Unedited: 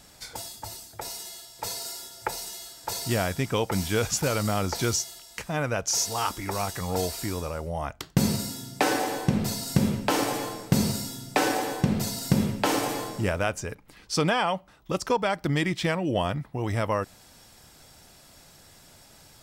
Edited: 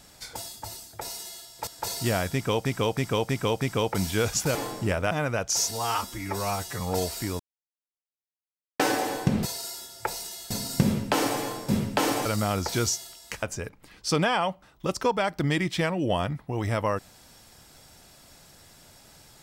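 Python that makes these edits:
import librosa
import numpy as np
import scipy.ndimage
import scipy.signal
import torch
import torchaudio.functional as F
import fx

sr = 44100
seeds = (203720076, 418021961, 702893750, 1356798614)

y = fx.edit(x, sr, fx.move(start_s=1.67, length_s=1.05, to_s=9.47),
    fx.repeat(start_s=3.38, length_s=0.32, count=5),
    fx.swap(start_s=4.32, length_s=1.17, other_s=12.92, other_length_s=0.56),
    fx.stretch_span(start_s=6.09, length_s=0.73, factor=1.5),
    fx.silence(start_s=7.41, length_s=1.4),
    fx.cut(start_s=10.65, length_s=1.7), tone=tone)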